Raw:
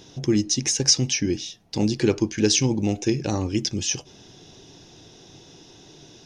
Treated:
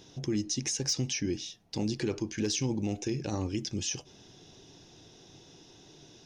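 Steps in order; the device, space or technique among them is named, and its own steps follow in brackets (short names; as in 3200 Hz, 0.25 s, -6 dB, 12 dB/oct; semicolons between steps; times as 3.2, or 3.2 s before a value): clipper into limiter (hard clip -9.5 dBFS, distortion -28 dB; limiter -15.5 dBFS, peak gain reduction 6 dB); gain -6.5 dB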